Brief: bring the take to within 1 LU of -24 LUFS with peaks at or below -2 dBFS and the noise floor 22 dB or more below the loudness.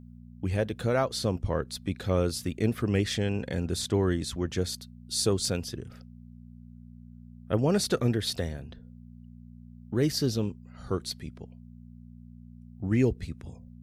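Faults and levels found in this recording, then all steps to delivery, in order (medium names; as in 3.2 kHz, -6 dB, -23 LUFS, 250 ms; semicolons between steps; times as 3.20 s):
hum 60 Hz; highest harmonic 240 Hz; hum level -44 dBFS; loudness -29.5 LUFS; peak level -11.5 dBFS; loudness target -24.0 LUFS
-> de-hum 60 Hz, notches 4; trim +5.5 dB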